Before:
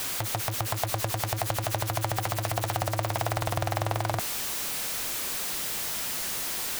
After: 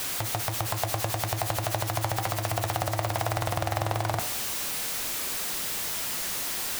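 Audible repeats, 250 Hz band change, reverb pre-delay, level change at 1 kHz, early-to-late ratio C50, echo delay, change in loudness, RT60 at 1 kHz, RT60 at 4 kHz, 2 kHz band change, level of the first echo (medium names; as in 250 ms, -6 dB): no echo, +0.5 dB, 11 ms, +0.5 dB, 12.0 dB, no echo, +0.5 dB, 0.90 s, 0.85 s, +0.5 dB, no echo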